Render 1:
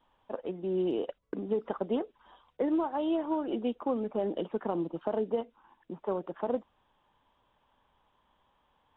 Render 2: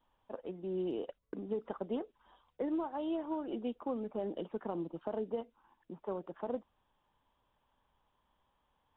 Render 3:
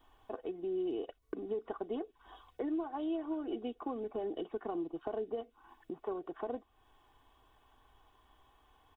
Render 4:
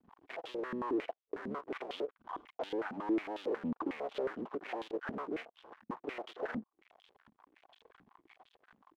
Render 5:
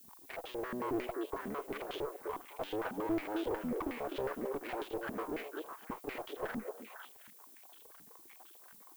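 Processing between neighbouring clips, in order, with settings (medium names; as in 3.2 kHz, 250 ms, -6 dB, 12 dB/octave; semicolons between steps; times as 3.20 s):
bass shelf 130 Hz +5 dB; trim -7 dB
comb 2.7 ms, depth 67%; compression 2:1, threshold -53 dBFS, peak gain reduction 13.5 dB; trim +9 dB
cycle switcher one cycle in 3, muted; waveshaping leveller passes 5; step-sequenced band-pass 11 Hz 220–3300 Hz; trim +2 dB
single-diode clipper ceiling -36.5 dBFS; repeats whose band climbs or falls 252 ms, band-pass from 450 Hz, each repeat 1.4 oct, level -2 dB; added noise violet -59 dBFS; trim +1 dB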